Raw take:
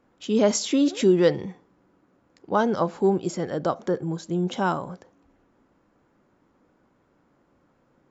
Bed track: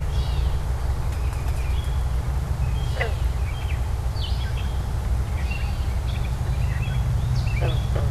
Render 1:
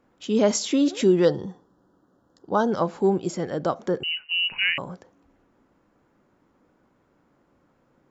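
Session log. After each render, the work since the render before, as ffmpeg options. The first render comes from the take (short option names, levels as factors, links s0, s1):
-filter_complex "[0:a]asettb=1/sr,asplit=3[s0][s1][s2];[s0]atrim=end=1.254[s3];[s1]atrim=start=1.25:end=2.72,asetpts=PTS-STARTPTS,afade=t=in:d=0.004:c=qsin,afade=t=out:st=1.466:d=0.004:c=qsin,asuperstop=centerf=2300:order=4:qfactor=1.5[s4];[s2]atrim=start=2.716[s5];[s3][s4]acrossfade=d=0.004:c1=hsin:c2=qsin[s6];[s6][s5]acrossfade=d=0.004:c1=qsin:c2=hsin,asettb=1/sr,asplit=3[s7][s8][s9];[s7]atrim=end=4.034[s10];[s8]atrim=start=4.03:end=4.78,asetpts=PTS-STARTPTS,afade=t=in:d=0.004:c=qsin,afade=t=out:st=0.746:d=0.004:c=qsin,lowpass=f=2600:t=q:w=0.5098,lowpass=f=2600:t=q:w=0.6013,lowpass=f=2600:t=q:w=0.9,lowpass=f=2600:t=q:w=2.563,afreqshift=-3100[s11];[s9]atrim=start=4.776[s12];[s10][s11]acrossfade=d=0.004:c1=hsin:c2=qsin[s13];[s13][s12]acrossfade=d=0.004:c1=qsin:c2=hsin"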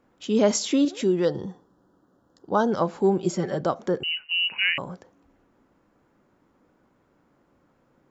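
-filter_complex "[0:a]asettb=1/sr,asplit=3[s0][s1][s2];[s0]atrim=end=3.184[s3];[s1]atrim=start=3.18:end=3.61,asetpts=PTS-STARTPTS,afade=t=in:d=0.004:c=qsin,afade=t=out:st=0.426:d=0.004:c=qsin,aecho=1:1:5.2:0.66,atrim=end_sample=18963[s4];[s2]atrim=start=3.606[s5];[s3][s4]acrossfade=d=0.004:c1=hsin:c2=qsin[s6];[s6][s5]acrossfade=d=0.004:c1=qsin:c2=hsin,asettb=1/sr,asplit=3[s7][s8][s9];[s7]atrim=end=4.284[s10];[s8]atrim=start=4.28:end=4.75,asetpts=PTS-STARTPTS,afade=t=in:d=0.004:c=qsin,afade=t=out:st=0.466:d=0.004:c=qsin,highpass=190,lowpass=6600[s11];[s9]atrim=start=4.746[s12];[s10][s11]acrossfade=d=0.004:c1=hsin:c2=qsin[s13];[s13][s12]acrossfade=d=0.004:c1=qsin:c2=hsin,asplit=3[s14][s15][s16];[s14]atrim=end=0.852[s17];[s15]atrim=start=0.848:end=1.352,asetpts=PTS-STARTPTS,volume=0.631[s18];[s16]atrim=start=1.348[s19];[s17][s18]acrossfade=d=0.004:c1=hsin:c2=hsin[s20];[s20][s19]acrossfade=d=0.004:c1=hsin:c2=hsin"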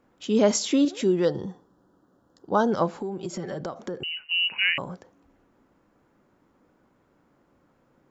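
-filter_complex "[0:a]asettb=1/sr,asplit=3[s0][s1][s2];[s0]atrim=end=2.904[s3];[s1]atrim=start=2.9:end=4.2,asetpts=PTS-STARTPTS,afade=t=in:d=0.004:c=qsin,afade=t=out:st=1.296:d=0.004:c=qsin,acompressor=threshold=0.0398:ratio=8:attack=3.2:release=140:knee=1:detection=peak[s4];[s2]atrim=start=4.196[s5];[s3][s4]acrossfade=d=0.004:c1=hsin:c2=qsin[s6];[s6][s5]acrossfade=d=0.004:c1=qsin:c2=hsin"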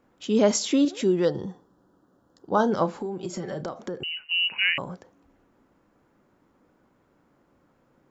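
-filter_complex "[0:a]asettb=1/sr,asplit=3[s0][s1][s2];[s0]atrim=end=2.524[s3];[s1]atrim=start=2.52:end=3.78,asetpts=PTS-STARTPTS,afade=t=in:d=0.004:c=qsin,afade=t=out:st=1.256:d=0.004:c=qsin,asplit=2[s4][s5];[s5]adelay=33,volume=0.211[s6];[s4][s6]amix=inputs=2:normalize=0,atrim=end_sample=55566[s7];[s2]atrim=start=3.776[s8];[s3][s7]acrossfade=d=0.004:c1=hsin:c2=qsin[s9];[s9][s8]acrossfade=d=0.004:c1=qsin:c2=hsin"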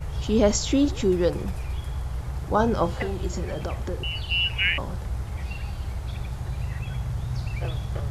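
-filter_complex "[1:a]volume=0.473[s0];[0:a][s0]amix=inputs=2:normalize=0"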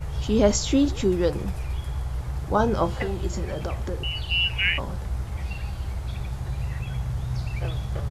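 -filter_complex "[0:a]asplit=2[s0][s1];[s1]adelay=15,volume=0.224[s2];[s0][s2]amix=inputs=2:normalize=0"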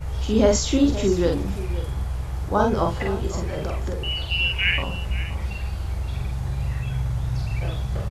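-filter_complex "[0:a]asplit=2[s0][s1];[s1]adelay=46,volume=0.708[s2];[s0][s2]amix=inputs=2:normalize=0,aecho=1:1:524:0.188"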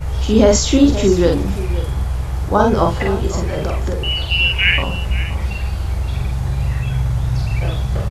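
-af "volume=2.24,alimiter=limit=0.891:level=0:latency=1"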